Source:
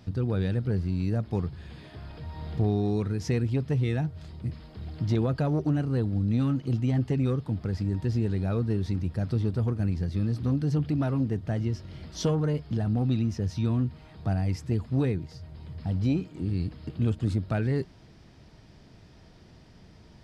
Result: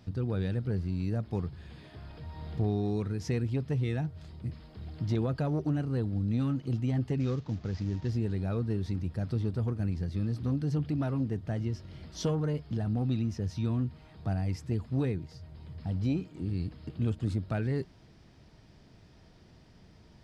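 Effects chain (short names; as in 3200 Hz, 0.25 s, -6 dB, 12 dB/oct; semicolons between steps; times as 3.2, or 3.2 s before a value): 7.2–8.1 CVSD 32 kbps; gain -4 dB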